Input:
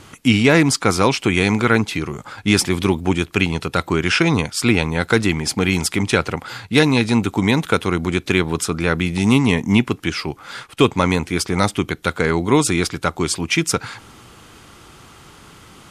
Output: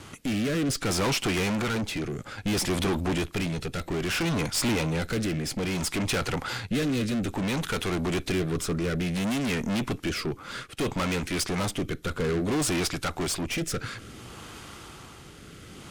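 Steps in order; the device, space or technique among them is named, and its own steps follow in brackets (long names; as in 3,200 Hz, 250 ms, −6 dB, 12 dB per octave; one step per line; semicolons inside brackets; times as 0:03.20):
overdriven rotary cabinet (tube saturation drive 27 dB, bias 0.55; rotating-speaker cabinet horn 0.6 Hz)
level +4 dB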